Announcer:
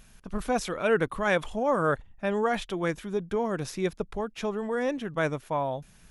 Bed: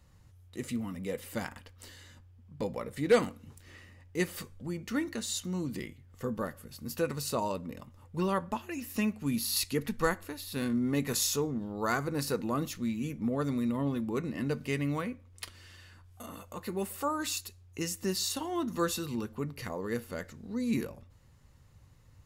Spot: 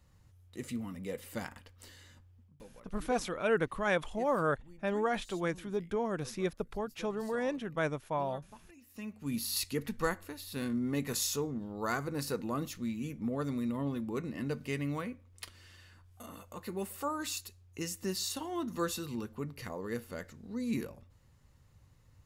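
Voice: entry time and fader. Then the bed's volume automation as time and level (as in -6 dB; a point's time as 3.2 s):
2.60 s, -5.0 dB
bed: 2.42 s -3.5 dB
2.63 s -20 dB
8.82 s -20 dB
9.34 s -3.5 dB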